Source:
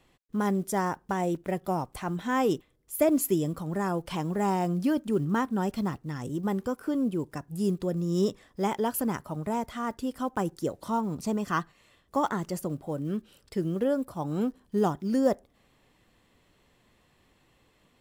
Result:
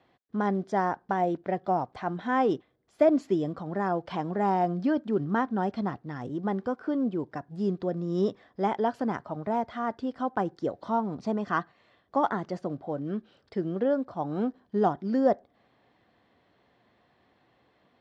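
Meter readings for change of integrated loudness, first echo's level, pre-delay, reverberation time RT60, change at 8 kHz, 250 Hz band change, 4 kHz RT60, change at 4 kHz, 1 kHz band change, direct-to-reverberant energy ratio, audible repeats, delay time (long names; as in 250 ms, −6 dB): +0.5 dB, no echo audible, no reverb audible, no reverb audible, below −20 dB, −1.0 dB, no reverb audible, −5.0 dB, +3.0 dB, no reverb audible, no echo audible, no echo audible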